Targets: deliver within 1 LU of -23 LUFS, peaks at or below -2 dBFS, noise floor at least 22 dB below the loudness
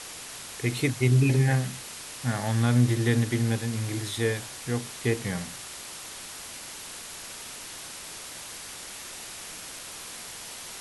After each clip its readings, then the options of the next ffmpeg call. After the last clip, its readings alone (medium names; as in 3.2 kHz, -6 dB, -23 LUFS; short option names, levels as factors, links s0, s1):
noise floor -41 dBFS; noise floor target -52 dBFS; loudness -29.5 LUFS; peak level -10.5 dBFS; loudness target -23.0 LUFS
-> -af "afftdn=nr=11:nf=-41"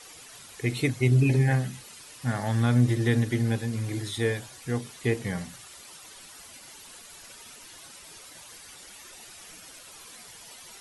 noise floor -48 dBFS; noise floor target -49 dBFS
-> -af "afftdn=nr=6:nf=-48"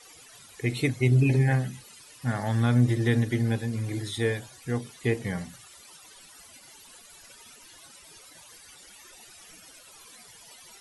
noise floor -52 dBFS; loudness -26.5 LUFS; peak level -10.5 dBFS; loudness target -23.0 LUFS
-> -af "volume=1.5"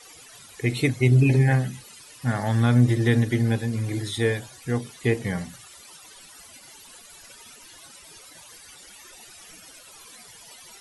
loudness -23.0 LUFS; peak level -7.0 dBFS; noise floor -48 dBFS